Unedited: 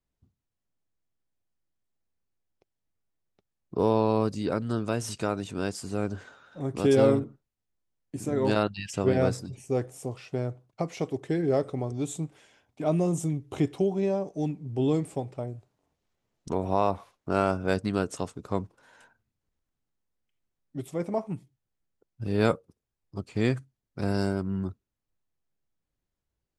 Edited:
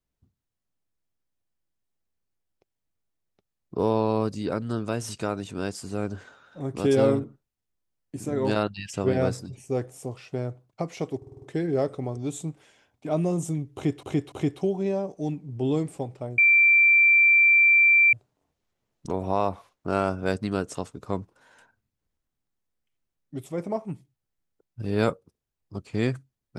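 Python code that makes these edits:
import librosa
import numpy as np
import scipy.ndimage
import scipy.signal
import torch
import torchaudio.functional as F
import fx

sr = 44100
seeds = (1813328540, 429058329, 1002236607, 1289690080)

y = fx.edit(x, sr, fx.stutter(start_s=11.17, slice_s=0.05, count=6),
    fx.repeat(start_s=13.49, length_s=0.29, count=3),
    fx.insert_tone(at_s=15.55, length_s=1.75, hz=2350.0, db=-14.0), tone=tone)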